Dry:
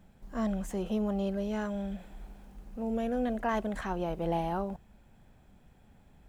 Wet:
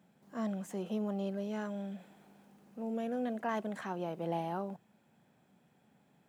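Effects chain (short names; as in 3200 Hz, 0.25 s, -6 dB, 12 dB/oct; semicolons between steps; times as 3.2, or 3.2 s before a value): HPF 140 Hz 24 dB/oct; gain -4.5 dB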